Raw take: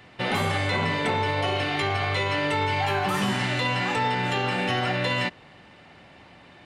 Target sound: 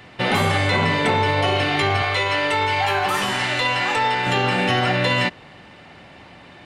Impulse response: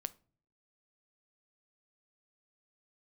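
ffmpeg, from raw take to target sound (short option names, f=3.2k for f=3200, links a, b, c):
-filter_complex "[0:a]asettb=1/sr,asplit=3[a][b][c];[a]atrim=end=2.024[d];[b]atrim=start=2.02:end=4.27,asetpts=PTS-STARTPTS,afade=t=in:d=0.004:c=qsin,afade=t=out:st=2.246:d=0.004:c=qsin,equalizer=f=170:w=0.91:g=-13[e];[c]atrim=start=4.266[f];[d][e]acrossfade=d=0.004:c1=hsin:c2=qsin[g];[g][f]acrossfade=d=0.004:c1=qsin:c2=hsin,volume=6dB"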